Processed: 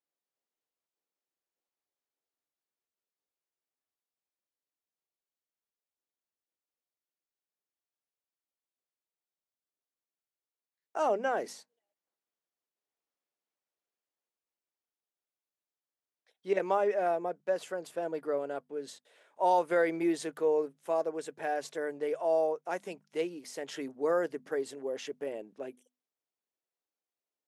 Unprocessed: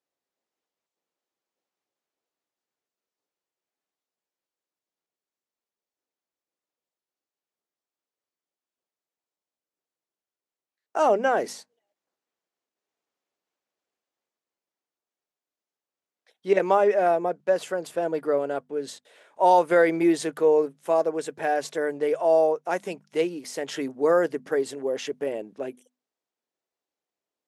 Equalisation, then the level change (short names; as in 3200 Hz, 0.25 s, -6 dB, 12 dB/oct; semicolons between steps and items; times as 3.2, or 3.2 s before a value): low shelf 83 Hz -9.5 dB; -8.0 dB